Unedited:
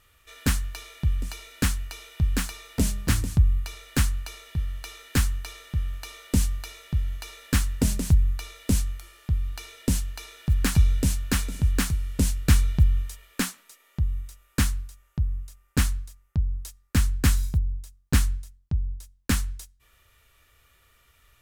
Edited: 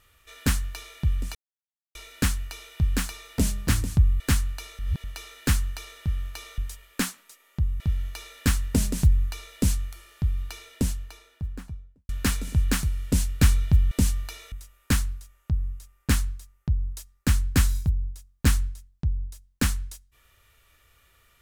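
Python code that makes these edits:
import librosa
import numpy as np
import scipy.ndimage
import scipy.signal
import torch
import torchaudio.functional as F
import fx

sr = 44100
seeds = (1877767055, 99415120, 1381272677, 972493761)

y = fx.studio_fade_out(x, sr, start_s=9.49, length_s=1.67)
y = fx.edit(y, sr, fx.insert_silence(at_s=1.35, length_s=0.6),
    fx.cut(start_s=3.6, length_s=0.28),
    fx.reverse_span(start_s=4.47, length_s=0.25),
    fx.swap(start_s=6.26, length_s=0.61, other_s=12.98, other_length_s=1.22), tone=tone)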